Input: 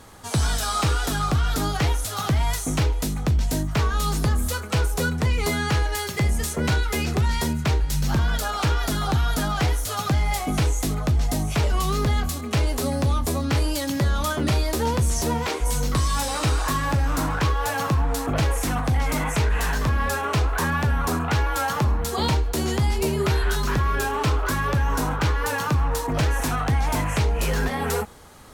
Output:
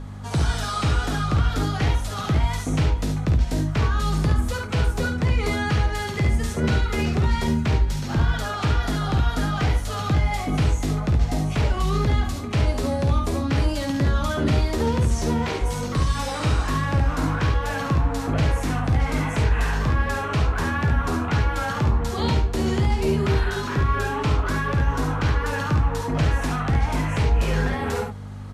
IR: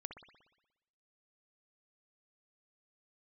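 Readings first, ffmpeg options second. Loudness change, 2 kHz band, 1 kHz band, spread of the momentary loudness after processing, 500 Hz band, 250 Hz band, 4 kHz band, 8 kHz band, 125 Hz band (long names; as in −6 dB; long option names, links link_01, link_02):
+0.5 dB, −0.5 dB, −1.5 dB, 2 LU, 0.0 dB, +2.0 dB, −2.5 dB, −7.5 dB, +1.5 dB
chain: -filter_complex "[0:a]aemphasis=mode=reproduction:type=50fm,acrossover=split=560|1300[link_01][link_02][link_03];[link_02]alimiter=level_in=6.5dB:limit=-24dB:level=0:latency=1,volume=-6.5dB[link_04];[link_01][link_04][link_03]amix=inputs=3:normalize=0,aeval=exprs='val(0)+0.0251*(sin(2*PI*50*n/s)+sin(2*PI*2*50*n/s)/2+sin(2*PI*3*50*n/s)/3+sin(2*PI*4*50*n/s)/4+sin(2*PI*5*50*n/s)/5)':channel_layout=same,aecho=1:1:52|70:0.422|0.473" -ar 32000 -c:a libmp3lame -b:a 96k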